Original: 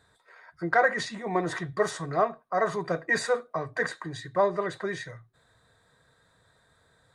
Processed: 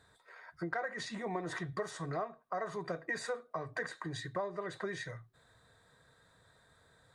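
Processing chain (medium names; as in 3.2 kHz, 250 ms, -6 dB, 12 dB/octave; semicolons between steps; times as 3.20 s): compression 5:1, threshold -34 dBFS, peak gain reduction 15.5 dB; trim -1.5 dB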